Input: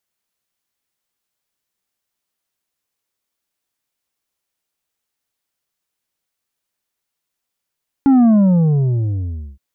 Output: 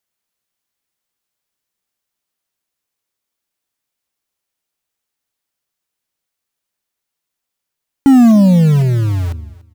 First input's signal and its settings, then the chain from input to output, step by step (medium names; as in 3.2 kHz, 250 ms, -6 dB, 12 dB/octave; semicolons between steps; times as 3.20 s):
sub drop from 280 Hz, over 1.52 s, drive 6 dB, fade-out 1.33 s, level -8.5 dB
in parallel at -5 dB: bit crusher 4-bit; on the sum: feedback delay 290 ms, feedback 18%, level -21 dB